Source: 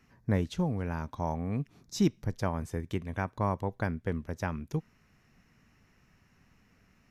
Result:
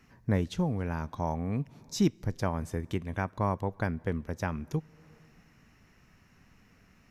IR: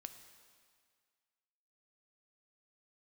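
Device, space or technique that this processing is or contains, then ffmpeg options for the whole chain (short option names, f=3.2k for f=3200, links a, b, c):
compressed reverb return: -filter_complex "[0:a]asplit=2[a][b];[1:a]atrim=start_sample=2205[c];[b][c]afir=irnorm=-1:irlink=0,acompressor=threshold=-49dB:ratio=5,volume=0dB[d];[a][d]amix=inputs=2:normalize=0"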